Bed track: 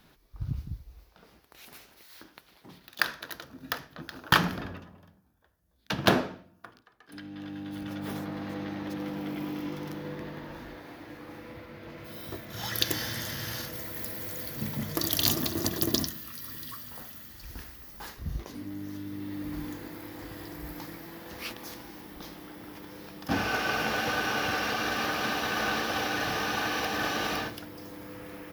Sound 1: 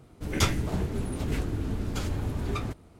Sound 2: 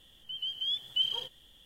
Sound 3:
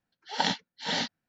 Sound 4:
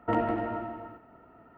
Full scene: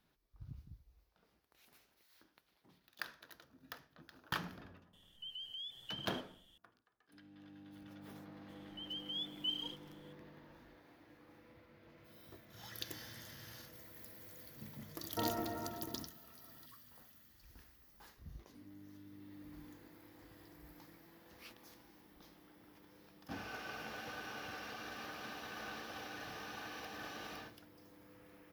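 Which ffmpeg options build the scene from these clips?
ffmpeg -i bed.wav -i cue0.wav -i cue1.wav -i cue2.wav -i cue3.wav -filter_complex "[2:a]asplit=2[link_01][link_02];[0:a]volume=-17.5dB[link_03];[link_01]acompressor=threshold=-36dB:ratio=6:attack=3.2:release=140:knee=1:detection=peak,atrim=end=1.65,asetpts=PTS-STARTPTS,volume=-7.5dB,afade=type=in:duration=0.004:curve=hsin,afade=type=out:start_time=1.646:duration=0.004:curve=hsin,adelay=217413S[link_04];[link_02]atrim=end=1.65,asetpts=PTS-STARTPTS,volume=-9.5dB,afade=type=in:duration=0.004:curve=hsin,afade=type=out:start_time=1.646:duration=0.004:curve=hsin,adelay=8480[link_05];[4:a]atrim=end=1.57,asetpts=PTS-STARTPTS,volume=-11dB,afade=type=in:duration=0.004:curve=hsin,afade=type=out:start_time=1.566:duration=0.004:curve=hsin,adelay=15090[link_06];[link_03][link_04][link_05][link_06]amix=inputs=4:normalize=0" out.wav

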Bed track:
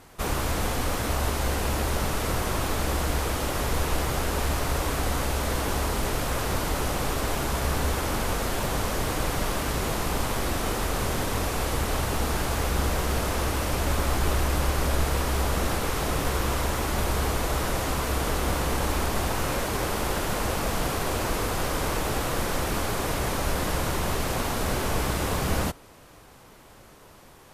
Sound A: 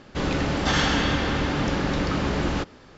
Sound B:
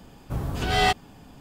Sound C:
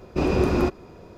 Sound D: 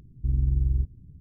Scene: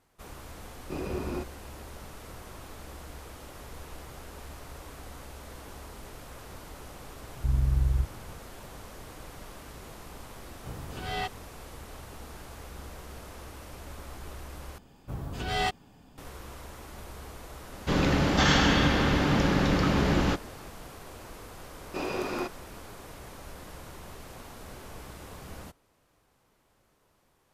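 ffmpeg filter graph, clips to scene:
ffmpeg -i bed.wav -i cue0.wav -i cue1.wav -i cue2.wav -i cue3.wav -filter_complex "[3:a]asplit=2[link_01][link_02];[2:a]asplit=2[link_03][link_04];[0:a]volume=-18dB[link_05];[link_03]acrossover=split=5200[link_06][link_07];[link_07]acompressor=threshold=-42dB:ratio=4:attack=1:release=60[link_08];[link_06][link_08]amix=inputs=2:normalize=0[link_09];[1:a]equalizer=frequency=170:width_type=o:width=0.77:gain=2.5[link_10];[link_02]highpass=frequency=820:poles=1[link_11];[link_05]asplit=2[link_12][link_13];[link_12]atrim=end=14.784[link_14];[link_04]atrim=end=1.4,asetpts=PTS-STARTPTS,volume=-7.5dB[link_15];[link_13]atrim=start=16.176[link_16];[link_01]atrim=end=1.17,asetpts=PTS-STARTPTS,volume=-13dB,afade=type=in:duration=0.004:curve=hsin,afade=type=out:start_time=1.166:duration=0.004:curve=hsin,adelay=740[link_17];[4:a]atrim=end=1.2,asetpts=PTS-STARTPTS,volume=-1.5dB,afade=type=in:duration=0.004:curve=hsin,afade=type=out:start_time=1.196:duration=0.004:curve=hsin,adelay=7200[link_18];[link_09]atrim=end=1.4,asetpts=PTS-STARTPTS,volume=-12dB,afade=type=in:duration=0.004:curve=hsin,afade=type=out:start_time=1.396:duration=0.004:curve=hsin,adelay=10350[link_19];[link_10]atrim=end=2.97,asetpts=PTS-STARTPTS,volume=-0.5dB,afade=type=in:duration=0.004:curve=hsin,afade=type=out:start_time=2.966:duration=0.004:curve=hsin,adelay=17720[link_20];[link_11]atrim=end=1.17,asetpts=PTS-STARTPTS,volume=-3.5dB,afade=type=in:duration=0.004:curve=hsin,afade=type=out:start_time=1.166:duration=0.004:curve=hsin,adelay=21780[link_21];[link_14][link_15]acrossfade=duration=0.004:curve1=hsin:curve2=hsin[link_22];[link_22][link_16]acrossfade=duration=0.004:curve1=hsin:curve2=hsin[link_23];[link_23][link_17][link_18][link_19][link_20][link_21]amix=inputs=6:normalize=0" out.wav

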